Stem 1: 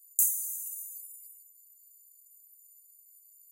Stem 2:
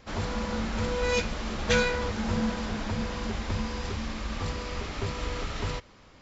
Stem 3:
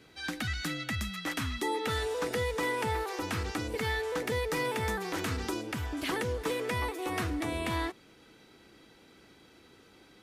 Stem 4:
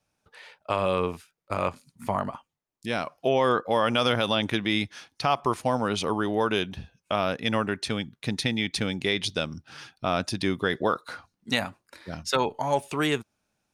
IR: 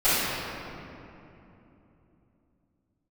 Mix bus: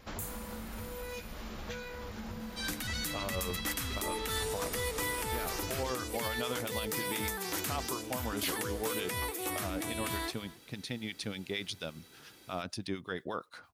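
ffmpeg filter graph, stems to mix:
-filter_complex "[0:a]volume=-7.5dB,afade=t=in:st=0.69:d=0.3:silence=0.316228[a];[1:a]acompressor=threshold=-37dB:ratio=8,volume=-2dB[b];[2:a]aemphasis=mode=production:type=75fm,adelay=2400,volume=-3dB,asplit=2[c][d];[d]volume=-19.5dB[e];[3:a]acrusher=bits=10:mix=0:aa=0.000001,acrossover=split=1100[f][g];[f]aeval=exprs='val(0)*(1-0.7/2+0.7/2*cos(2*PI*8.6*n/s))':c=same[h];[g]aeval=exprs='val(0)*(1-0.7/2-0.7/2*cos(2*PI*8.6*n/s))':c=same[i];[h][i]amix=inputs=2:normalize=0,adelay=2450,volume=-8.5dB[j];[e]aecho=0:1:265:1[k];[a][b][c][j][k]amix=inputs=5:normalize=0,alimiter=limit=-23dB:level=0:latency=1:release=155"

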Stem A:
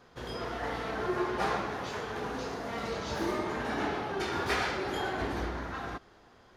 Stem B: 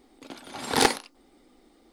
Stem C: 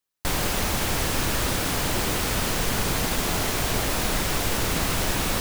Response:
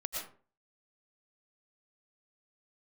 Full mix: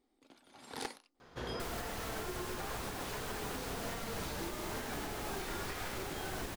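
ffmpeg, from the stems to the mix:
-filter_complex "[0:a]acompressor=threshold=-35dB:ratio=6,adelay=1200,volume=0dB[a];[1:a]volume=-19dB[b];[2:a]adelay=1350,volume=-14dB[c];[a][b][c]amix=inputs=3:normalize=0,alimiter=level_in=5.5dB:limit=-24dB:level=0:latency=1:release=457,volume=-5.5dB"

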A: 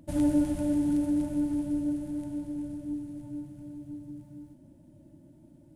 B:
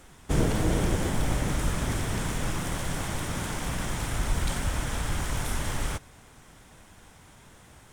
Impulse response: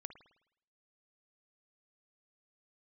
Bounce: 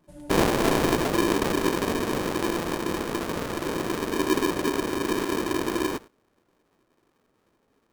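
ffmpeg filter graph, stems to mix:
-filter_complex "[0:a]aecho=1:1:5.4:0.65,volume=-15dB[a];[1:a]lowpass=f=1.2k:w=0.5412,lowpass=f=1.2k:w=1.3066,agate=range=-17dB:threshold=-42dB:ratio=16:detection=peak,aeval=exprs='val(0)*sgn(sin(2*PI*340*n/s))':c=same,volume=2dB[b];[a][b]amix=inputs=2:normalize=0"

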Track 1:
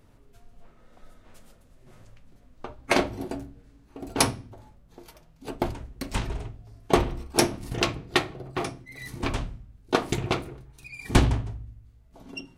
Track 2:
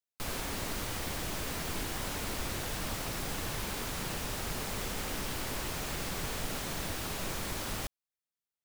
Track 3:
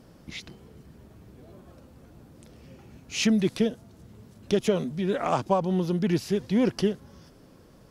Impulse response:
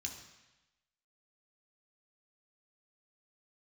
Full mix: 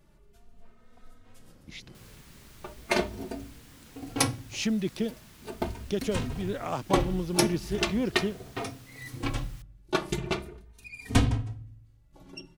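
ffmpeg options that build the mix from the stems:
-filter_complex "[0:a]asplit=2[a][b];[b]adelay=3,afreqshift=0.4[c];[a][c]amix=inputs=2:normalize=1,volume=0.5dB[d];[1:a]highpass=950,adelay=1750,volume=-16dB[e];[2:a]adelay=1400,volume=-5dB[f];[d][e][f]amix=inputs=3:normalize=0,equalizer=f=780:w=0.62:g=-2.5"

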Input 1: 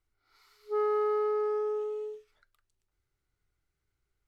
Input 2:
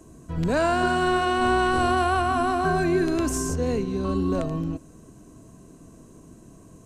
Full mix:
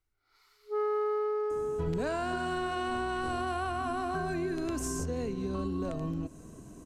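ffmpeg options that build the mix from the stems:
-filter_complex "[0:a]volume=-2dB[a];[1:a]acompressor=threshold=-30dB:ratio=6,adelay=1500,volume=-0.5dB[b];[a][b]amix=inputs=2:normalize=0"

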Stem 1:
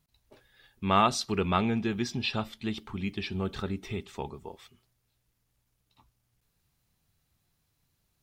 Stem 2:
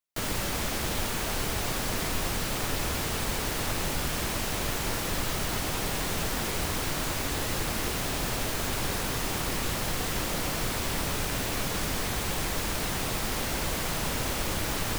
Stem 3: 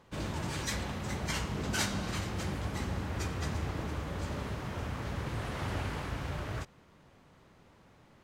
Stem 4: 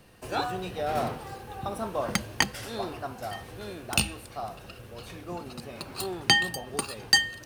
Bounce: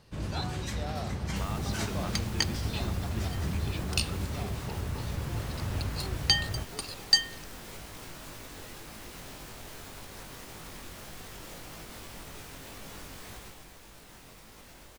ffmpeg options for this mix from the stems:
-filter_complex "[0:a]acompressor=threshold=-33dB:ratio=6,adelay=500,volume=-4.5dB[a];[1:a]alimiter=level_in=3dB:limit=-24dB:level=0:latency=1:release=237,volume=-3dB,flanger=delay=18.5:depth=4.3:speed=1.8,adelay=1200,volume=-4.5dB,afade=t=out:st=13.33:d=0.35:silence=0.446684[b];[2:a]lowshelf=f=210:g=10.5,volume=-5dB[c];[3:a]equalizer=f=4.8k:t=o:w=1.2:g=12,volume=-11dB[d];[a][b][c][d]amix=inputs=4:normalize=0"

